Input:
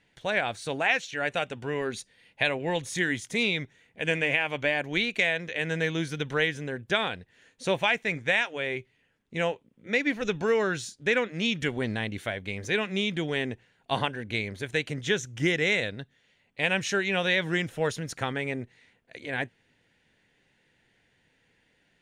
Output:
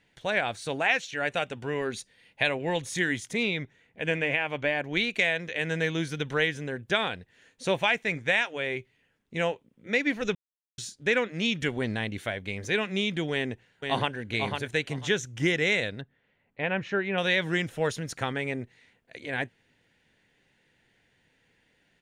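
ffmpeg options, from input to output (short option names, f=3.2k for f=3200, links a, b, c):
-filter_complex "[0:a]asettb=1/sr,asplit=3[a][b][c];[a]atrim=end=3.334[d];[b]atrim=start=3.33:end=4.97,asetpts=PTS-STARTPTS,afade=t=in:d=0.004:c=qsin,afade=t=out:st=1.636:d=0.004:c=qsin,highshelf=f=4.2k:g=-9[e];[c]atrim=start=4.966[f];[d][e]acrossfade=d=0.004:c1=hsin:c2=qsin[g];[g][f]acrossfade=d=0.004:c1=qsin:c2=hsin,asplit=2[h][i];[i]afade=t=in:st=13.32:d=0.01,afade=t=out:st=14.17:d=0.01,aecho=0:1:500|1000|1500:0.562341|0.112468|0.0224937[j];[h][j]amix=inputs=2:normalize=0,asettb=1/sr,asplit=3[k][l][m];[k]atrim=end=16.014[n];[l]atrim=start=16.01:end=17.18,asetpts=PTS-STARTPTS,afade=t=in:d=0.004:c=qsin,afade=t=out:st=1.166:d=0.004:c=qsin,lowpass=1.8k[o];[m]atrim=start=17.176[p];[n][o]acrossfade=d=0.004:c1=hsin:c2=qsin[q];[q][p]acrossfade=d=0.004:c1=qsin:c2=hsin,asplit=3[r][s][t];[r]atrim=end=10.35,asetpts=PTS-STARTPTS,afade=t=out:st=10.346:d=0.004:c=hsin[u];[s]atrim=start=10.35:end=10.78,asetpts=PTS-STARTPTS,volume=0[v];[t]atrim=start=10.78,asetpts=PTS-STARTPTS,afade=t=in:d=0.004:c=hsin[w];[u][v][w]concat=n=3:v=0:a=1"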